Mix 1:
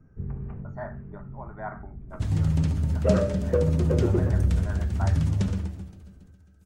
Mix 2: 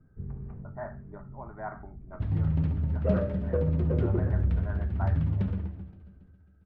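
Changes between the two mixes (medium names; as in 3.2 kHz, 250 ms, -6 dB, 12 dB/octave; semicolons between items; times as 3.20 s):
first sound -4.5 dB; second sound -3.0 dB; master: add distance through air 450 m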